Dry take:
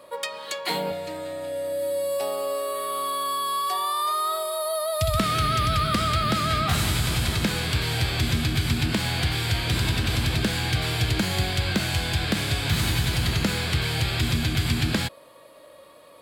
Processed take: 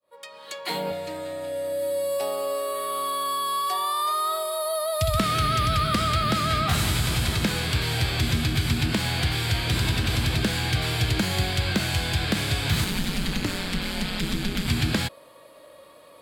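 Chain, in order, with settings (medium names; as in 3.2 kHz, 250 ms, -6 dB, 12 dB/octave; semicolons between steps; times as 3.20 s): fade-in on the opening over 0.94 s; 12.84–14.68 s: ring modulator 93 Hz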